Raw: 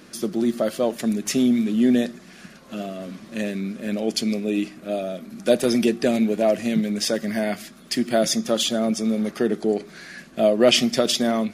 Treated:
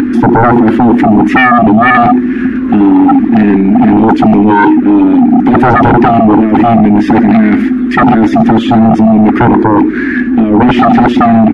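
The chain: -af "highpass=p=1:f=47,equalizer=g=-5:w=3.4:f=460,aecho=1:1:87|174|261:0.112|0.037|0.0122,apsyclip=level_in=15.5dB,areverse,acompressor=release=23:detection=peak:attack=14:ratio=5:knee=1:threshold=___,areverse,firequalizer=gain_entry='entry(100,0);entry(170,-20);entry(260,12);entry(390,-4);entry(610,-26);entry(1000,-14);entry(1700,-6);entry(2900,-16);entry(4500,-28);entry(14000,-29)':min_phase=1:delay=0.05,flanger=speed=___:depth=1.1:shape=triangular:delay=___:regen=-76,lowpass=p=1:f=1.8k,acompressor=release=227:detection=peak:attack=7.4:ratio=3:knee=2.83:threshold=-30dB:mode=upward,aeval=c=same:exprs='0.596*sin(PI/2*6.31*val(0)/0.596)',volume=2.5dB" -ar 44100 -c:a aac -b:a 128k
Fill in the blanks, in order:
-17dB, 0.97, 4.1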